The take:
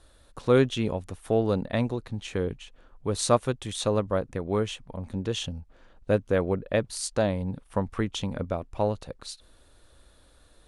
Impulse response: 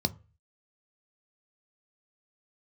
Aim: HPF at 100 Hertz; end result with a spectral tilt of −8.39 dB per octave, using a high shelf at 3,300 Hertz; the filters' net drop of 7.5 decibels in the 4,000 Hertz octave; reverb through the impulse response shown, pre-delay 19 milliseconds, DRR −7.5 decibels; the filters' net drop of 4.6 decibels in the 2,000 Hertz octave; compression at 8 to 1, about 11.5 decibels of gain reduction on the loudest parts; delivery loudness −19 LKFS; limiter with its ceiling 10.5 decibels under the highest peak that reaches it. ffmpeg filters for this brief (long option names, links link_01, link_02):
-filter_complex "[0:a]highpass=100,equalizer=frequency=2000:width_type=o:gain=-3.5,highshelf=frequency=3300:gain=-5.5,equalizer=frequency=4000:width_type=o:gain=-4.5,acompressor=threshold=-27dB:ratio=8,alimiter=level_in=2dB:limit=-24dB:level=0:latency=1,volume=-2dB,asplit=2[link_01][link_02];[1:a]atrim=start_sample=2205,adelay=19[link_03];[link_02][link_03]afir=irnorm=-1:irlink=0,volume=1.5dB[link_04];[link_01][link_04]amix=inputs=2:normalize=0,volume=3.5dB"